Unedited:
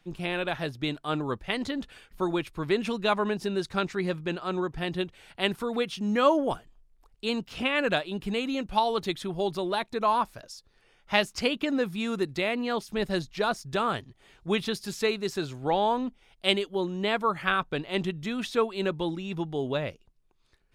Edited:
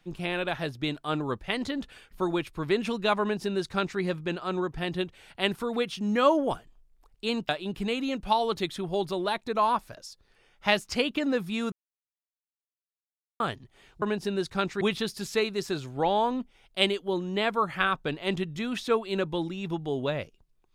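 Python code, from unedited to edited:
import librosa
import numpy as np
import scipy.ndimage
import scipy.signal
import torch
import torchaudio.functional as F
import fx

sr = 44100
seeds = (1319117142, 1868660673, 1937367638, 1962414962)

y = fx.edit(x, sr, fx.duplicate(start_s=3.21, length_s=0.79, to_s=14.48),
    fx.cut(start_s=7.49, length_s=0.46),
    fx.silence(start_s=12.18, length_s=1.68), tone=tone)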